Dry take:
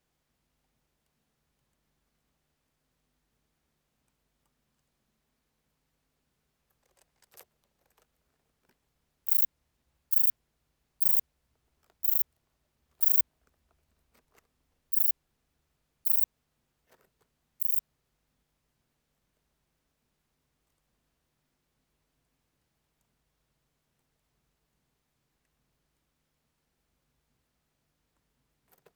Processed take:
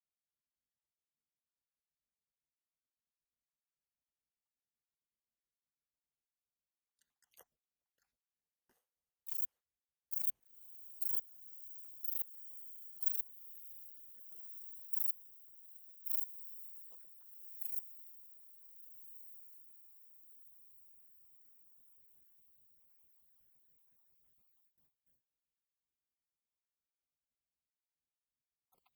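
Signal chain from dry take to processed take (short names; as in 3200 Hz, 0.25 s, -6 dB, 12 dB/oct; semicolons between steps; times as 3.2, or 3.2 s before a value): random spectral dropouts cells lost 56%; diffused feedback echo 1.547 s, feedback 54%, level -11 dB; gate with hold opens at -56 dBFS; gain -7 dB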